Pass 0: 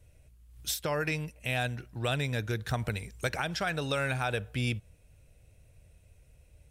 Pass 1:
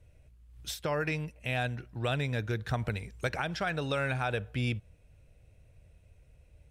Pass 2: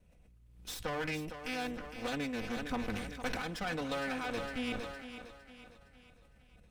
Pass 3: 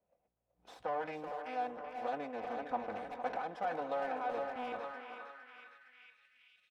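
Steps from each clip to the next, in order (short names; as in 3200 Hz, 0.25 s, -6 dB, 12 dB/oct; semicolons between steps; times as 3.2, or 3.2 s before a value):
high shelf 5700 Hz -11.5 dB
minimum comb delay 4 ms; thinning echo 0.459 s, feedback 47%, high-pass 180 Hz, level -10 dB; sustainer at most 42 dB/s; gain -4 dB
band-pass sweep 730 Hz -> 3000 Hz, 4.46–6.52; spectral noise reduction 8 dB; speakerphone echo 0.38 s, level -7 dB; gain +6 dB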